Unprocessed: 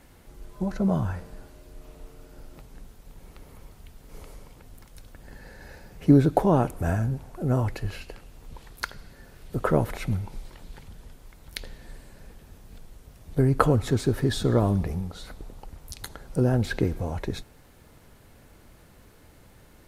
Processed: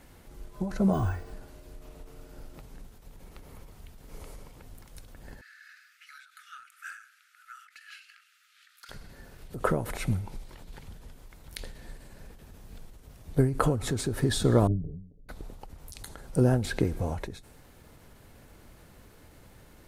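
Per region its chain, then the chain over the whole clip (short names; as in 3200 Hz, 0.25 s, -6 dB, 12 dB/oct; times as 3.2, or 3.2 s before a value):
0.93–1.33 comb 2.7 ms, depth 68% + careless resampling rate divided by 2×, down filtered, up hold
5.41–8.89 brick-wall FIR high-pass 1200 Hz + high shelf 6200 Hz -11 dB + overloaded stage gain 32.5 dB
14.67–15.29 Gaussian blur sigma 23 samples + comb 7 ms, depth 68% + upward expander, over -40 dBFS
whole clip: dynamic EQ 8900 Hz, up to +6 dB, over -60 dBFS, Q 1.5; ending taper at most 100 dB/s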